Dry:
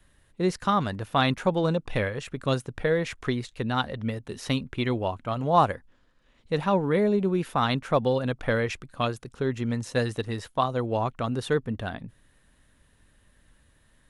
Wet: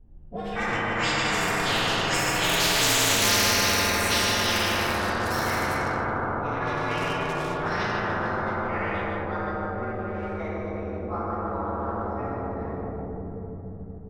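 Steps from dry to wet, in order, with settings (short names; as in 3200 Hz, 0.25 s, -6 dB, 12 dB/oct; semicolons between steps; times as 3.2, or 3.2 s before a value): inharmonic rescaling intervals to 120%; Doppler pass-by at 3.04, 52 m/s, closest 14 m; high shelf 4500 Hz -8 dB; echo 0.152 s -5 dB; plate-style reverb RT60 4.3 s, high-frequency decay 0.45×, DRR -8 dB; short-mantissa float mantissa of 4-bit; low-pass opened by the level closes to 600 Hz, open at -30 dBFS; low shelf 120 Hz +11 dB; band-limited delay 0.174 s, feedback 65%, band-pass 1200 Hz, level -15 dB; spectral compressor 10:1; gain +1 dB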